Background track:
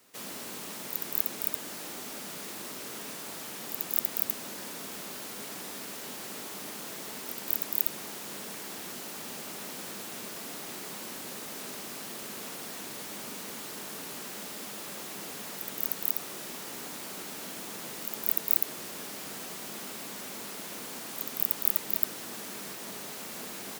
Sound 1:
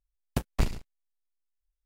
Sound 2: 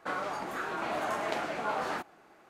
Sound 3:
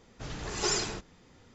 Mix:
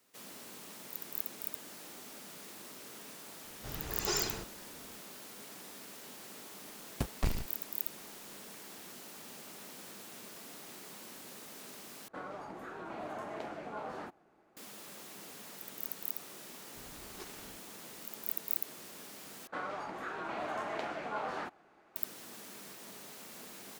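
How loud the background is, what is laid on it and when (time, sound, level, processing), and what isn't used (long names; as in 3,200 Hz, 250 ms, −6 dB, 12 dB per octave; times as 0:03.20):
background track −9 dB
0:03.44: mix in 3 −4.5 dB
0:06.64: mix in 1 + brickwall limiter −22.5 dBFS
0:12.08: overwrite with 2 −9.5 dB + tilt shelving filter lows +5 dB, about 810 Hz
0:16.56: mix in 3 −17 dB + gap after every zero crossing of 0.18 ms
0:19.47: overwrite with 2 −5 dB + high-shelf EQ 8,100 Hz −11.5 dB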